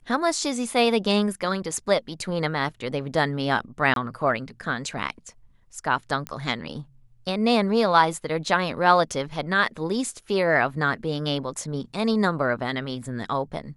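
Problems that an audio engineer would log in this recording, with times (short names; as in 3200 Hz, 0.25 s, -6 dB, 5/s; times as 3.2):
3.94–3.96 gap 22 ms
6.27 pop -15 dBFS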